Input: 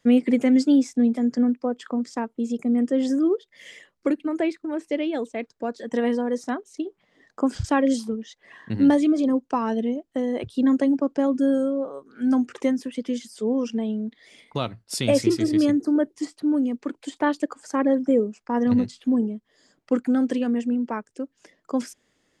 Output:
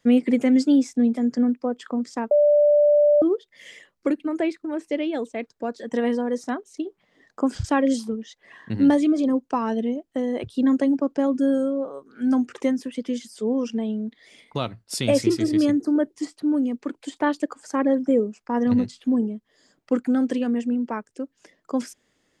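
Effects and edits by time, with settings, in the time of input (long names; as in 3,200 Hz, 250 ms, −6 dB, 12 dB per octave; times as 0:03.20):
0:02.31–0:03.22: beep over 589 Hz −13 dBFS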